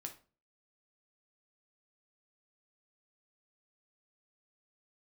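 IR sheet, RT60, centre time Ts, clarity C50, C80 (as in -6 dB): 0.35 s, 10 ms, 11.5 dB, 18.5 dB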